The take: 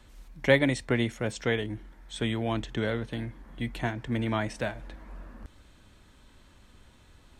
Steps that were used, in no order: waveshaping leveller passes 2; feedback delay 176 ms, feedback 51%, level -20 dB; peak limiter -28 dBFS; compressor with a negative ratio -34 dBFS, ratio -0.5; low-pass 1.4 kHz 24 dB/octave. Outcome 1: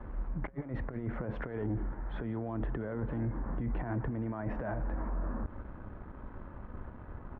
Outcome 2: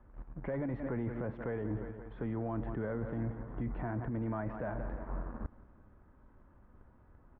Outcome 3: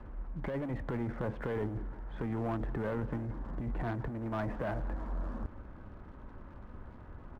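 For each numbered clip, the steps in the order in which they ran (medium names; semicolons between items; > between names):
compressor with a negative ratio > waveshaping leveller > low-pass > peak limiter > feedback delay; waveshaping leveller > feedback delay > peak limiter > low-pass > compressor with a negative ratio; peak limiter > low-pass > waveshaping leveller > compressor with a negative ratio > feedback delay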